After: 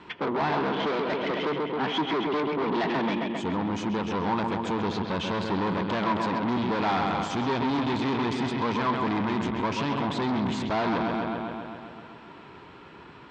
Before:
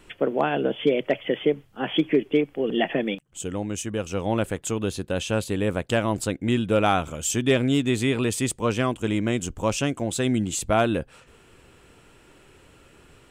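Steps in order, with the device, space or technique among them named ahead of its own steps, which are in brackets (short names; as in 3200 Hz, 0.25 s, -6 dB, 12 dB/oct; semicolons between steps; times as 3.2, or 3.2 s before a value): analogue delay pedal into a guitar amplifier (analogue delay 0.133 s, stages 4096, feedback 67%, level -8.5 dB; tube stage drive 32 dB, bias 0.45; speaker cabinet 110–4300 Hz, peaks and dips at 110 Hz -4 dB, 190 Hz +3 dB, 540 Hz -6 dB, 960 Hz +10 dB, 2800 Hz -5 dB); gain +7.5 dB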